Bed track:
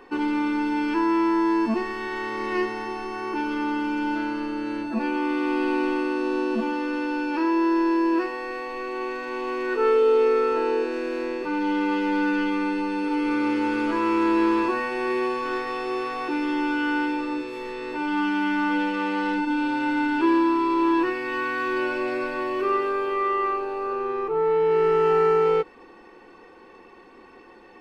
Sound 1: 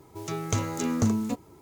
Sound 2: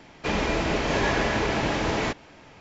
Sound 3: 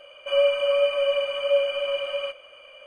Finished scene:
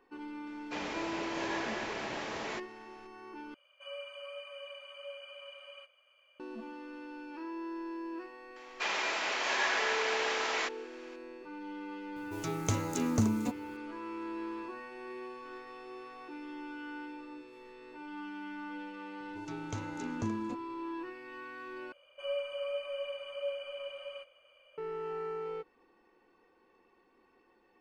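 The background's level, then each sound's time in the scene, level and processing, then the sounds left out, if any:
bed track -19 dB
0.47 add 2 -11 dB + HPF 420 Hz 6 dB/oct
3.54 replace with 3 -17.5 dB + HPF 850 Hz
8.56 add 2 -2.5 dB + HPF 970 Hz
12.16 add 1 -4 dB
19.2 add 1 -12.5 dB + LPF 5700 Hz
21.92 replace with 3 -15.5 dB

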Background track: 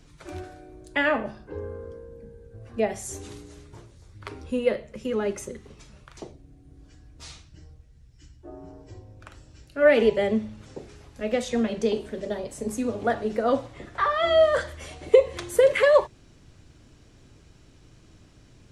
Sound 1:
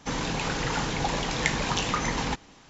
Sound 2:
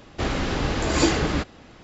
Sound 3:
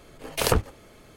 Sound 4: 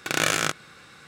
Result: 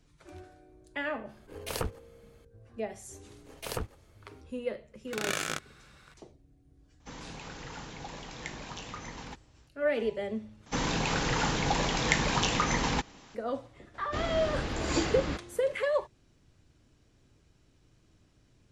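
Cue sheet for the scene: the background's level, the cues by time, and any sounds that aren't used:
background track -11 dB
1.29 add 3 -11.5 dB
3.25 add 3 -13.5 dB
5.07 add 4 -9.5 dB
7 add 1 -15 dB
10.66 replace with 1 -0.5 dB
13.94 add 2 -9 dB

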